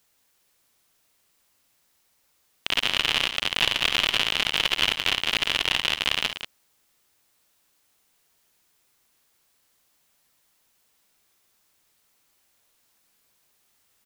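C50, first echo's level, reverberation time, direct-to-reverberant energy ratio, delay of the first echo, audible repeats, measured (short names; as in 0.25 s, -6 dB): none, -13.0 dB, none, none, 54 ms, 2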